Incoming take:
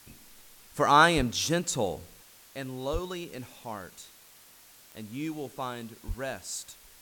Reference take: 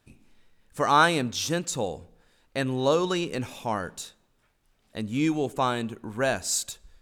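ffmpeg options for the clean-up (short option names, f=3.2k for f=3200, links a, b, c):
-filter_complex "[0:a]adeclick=t=4,asplit=3[a][b][c];[a]afade=t=out:st=1.16:d=0.02[d];[b]highpass=f=140:w=0.5412,highpass=f=140:w=1.3066,afade=t=in:st=1.16:d=0.02,afade=t=out:st=1.28:d=0.02[e];[c]afade=t=in:st=1.28:d=0.02[f];[d][e][f]amix=inputs=3:normalize=0,asplit=3[g][h][i];[g]afade=t=out:st=2.92:d=0.02[j];[h]highpass=f=140:w=0.5412,highpass=f=140:w=1.3066,afade=t=in:st=2.92:d=0.02,afade=t=out:st=3.04:d=0.02[k];[i]afade=t=in:st=3.04:d=0.02[l];[j][k][l]amix=inputs=3:normalize=0,asplit=3[m][n][o];[m]afade=t=out:st=6.07:d=0.02[p];[n]highpass=f=140:w=0.5412,highpass=f=140:w=1.3066,afade=t=in:st=6.07:d=0.02,afade=t=out:st=6.19:d=0.02[q];[o]afade=t=in:st=6.19:d=0.02[r];[p][q][r]amix=inputs=3:normalize=0,afwtdn=0.002,asetnsamples=n=441:p=0,asendcmd='2.23 volume volume 10dB',volume=0dB"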